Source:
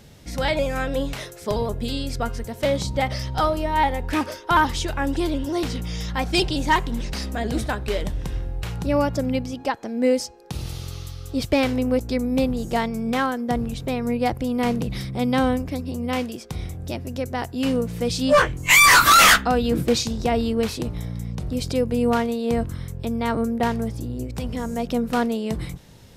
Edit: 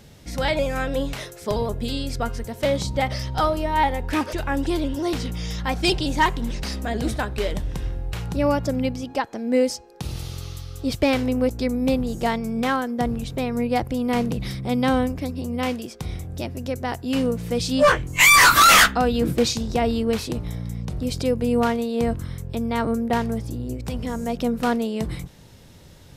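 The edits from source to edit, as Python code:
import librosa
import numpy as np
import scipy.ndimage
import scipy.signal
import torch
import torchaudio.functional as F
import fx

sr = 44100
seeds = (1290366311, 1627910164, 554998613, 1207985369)

y = fx.edit(x, sr, fx.cut(start_s=4.33, length_s=0.5), tone=tone)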